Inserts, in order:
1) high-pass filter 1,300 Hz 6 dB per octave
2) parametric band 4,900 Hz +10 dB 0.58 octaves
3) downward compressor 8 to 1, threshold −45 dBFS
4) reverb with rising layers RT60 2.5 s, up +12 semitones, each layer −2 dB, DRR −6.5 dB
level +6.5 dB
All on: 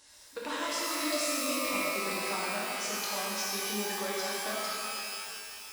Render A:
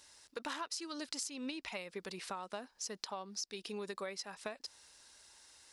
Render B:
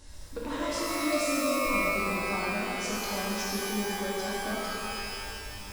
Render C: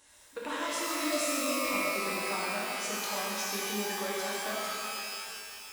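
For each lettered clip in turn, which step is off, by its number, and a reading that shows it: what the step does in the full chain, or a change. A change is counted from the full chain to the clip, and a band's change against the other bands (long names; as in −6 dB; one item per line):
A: 4, 2 kHz band −3.5 dB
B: 1, 125 Hz band +7.0 dB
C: 2, 4 kHz band −2.0 dB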